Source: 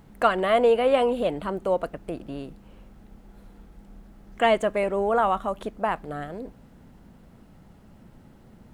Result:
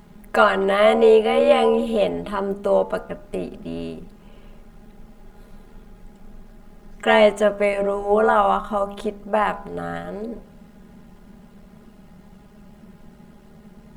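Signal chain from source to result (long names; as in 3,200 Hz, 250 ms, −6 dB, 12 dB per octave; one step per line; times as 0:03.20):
time stretch by overlap-add 1.6×, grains 26 ms
hum removal 67.1 Hz, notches 23
level +6.5 dB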